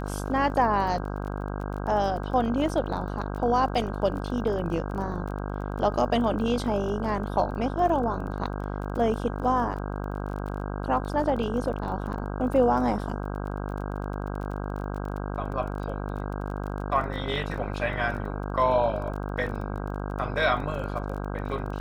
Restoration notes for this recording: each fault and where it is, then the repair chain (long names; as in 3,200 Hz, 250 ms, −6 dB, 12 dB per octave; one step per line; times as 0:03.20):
mains buzz 50 Hz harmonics 32 −32 dBFS
surface crackle 23 per second −35 dBFS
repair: click removal
hum removal 50 Hz, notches 32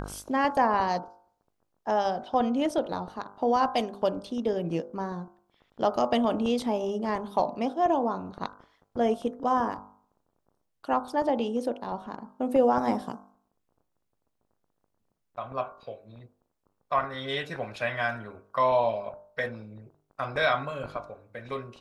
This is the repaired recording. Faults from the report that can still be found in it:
none of them is left